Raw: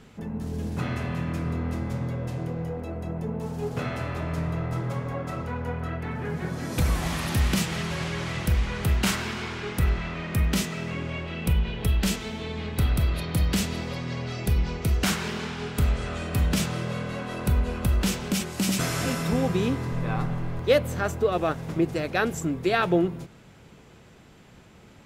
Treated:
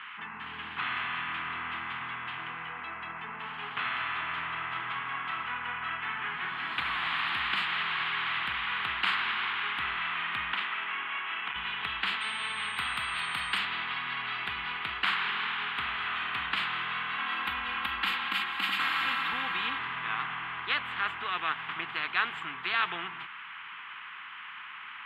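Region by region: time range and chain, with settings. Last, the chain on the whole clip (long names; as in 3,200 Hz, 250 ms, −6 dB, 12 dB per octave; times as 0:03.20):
0:10.53–0:11.56: three-way crossover with the lows and the highs turned down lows −19 dB, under 230 Hz, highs −12 dB, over 3,100 Hz + saturating transformer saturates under 730 Hz
0:12.20–0:13.57: notch filter 320 Hz, Q 5.7 + steady tone 8,600 Hz −27 dBFS + high-shelf EQ 5,700 Hz +11.5 dB
0:17.18–0:19.79: parametric band 13,000 Hz +14 dB 0.3 octaves + comb filter 3.7 ms, depth 100%
whole clip: elliptic band-pass filter 1,100–3,100 Hz, stop band 40 dB; high-shelf EQ 2,400 Hz −11 dB; every bin compressed towards the loudest bin 2 to 1; level +4 dB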